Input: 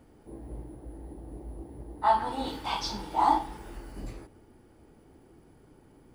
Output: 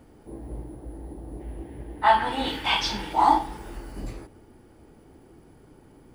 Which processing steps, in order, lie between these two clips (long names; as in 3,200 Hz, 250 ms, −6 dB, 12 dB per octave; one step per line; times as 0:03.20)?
0:01.40–0:03.13: flat-topped bell 2,300 Hz +9.5 dB 1.3 octaves
level +4.5 dB